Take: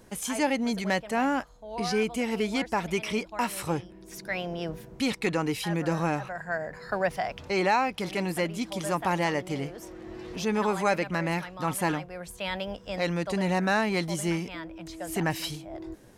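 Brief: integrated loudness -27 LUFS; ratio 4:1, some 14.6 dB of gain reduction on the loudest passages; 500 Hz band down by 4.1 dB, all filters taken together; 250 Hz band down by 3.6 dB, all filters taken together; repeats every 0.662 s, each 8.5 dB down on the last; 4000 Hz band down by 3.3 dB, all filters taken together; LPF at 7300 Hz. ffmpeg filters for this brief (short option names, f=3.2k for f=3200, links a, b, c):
-af "lowpass=7.3k,equalizer=f=250:t=o:g=-4,equalizer=f=500:t=o:g=-4,equalizer=f=4k:t=o:g=-4,acompressor=threshold=-40dB:ratio=4,aecho=1:1:662|1324|1986|2648:0.376|0.143|0.0543|0.0206,volume=15dB"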